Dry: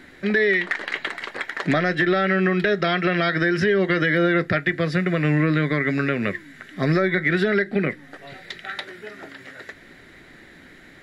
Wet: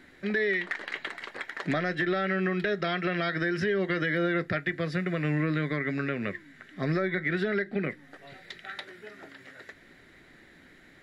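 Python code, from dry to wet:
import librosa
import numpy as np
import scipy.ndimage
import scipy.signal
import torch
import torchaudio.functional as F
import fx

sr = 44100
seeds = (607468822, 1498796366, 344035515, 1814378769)

y = fx.high_shelf(x, sr, hz=6600.0, db=-6.0, at=(5.76, 7.84))
y = y * librosa.db_to_amplitude(-8.0)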